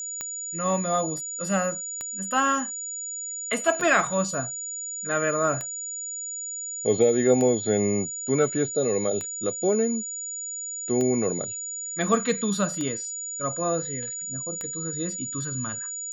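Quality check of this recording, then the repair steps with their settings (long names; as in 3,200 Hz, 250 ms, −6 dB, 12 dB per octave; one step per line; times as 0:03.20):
scratch tick 33 1/3 rpm −16 dBFS
whistle 6,900 Hz −31 dBFS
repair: click removal
notch filter 6,900 Hz, Q 30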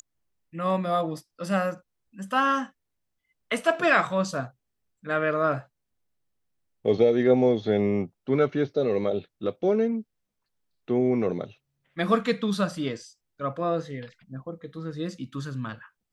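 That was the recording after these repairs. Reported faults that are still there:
none of them is left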